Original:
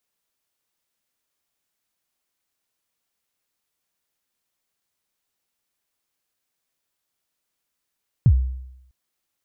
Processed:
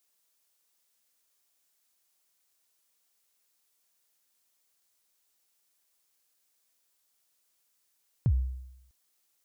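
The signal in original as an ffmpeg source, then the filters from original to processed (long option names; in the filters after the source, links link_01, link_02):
-f lavfi -i "aevalsrc='0.398*pow(10,-3*t/0.83)*sin(2*PI*(150*0.064/log(64/150)*(exp(log(64/150)*min(t,0.064)/0.064)-1)+64*max(t-0.064,0)))':duration=0.65:sample_rate=44100"
-af "bass=frequency=250:gain=-7,treble=frequency=4000:gain=7,alimiter=limit=-18dB:level=0:latency=1:release=123"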